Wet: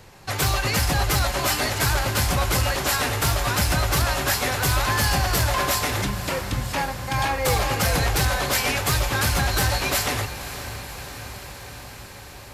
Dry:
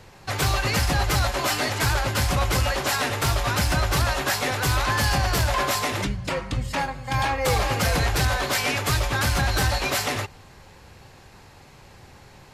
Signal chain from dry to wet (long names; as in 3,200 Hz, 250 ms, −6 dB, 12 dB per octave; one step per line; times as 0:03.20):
high-shelf EQ 9,700 Hz +8.5 dB
on a send: feedback delay with all-pass diffusion 547 ms, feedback 72%, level −13 dB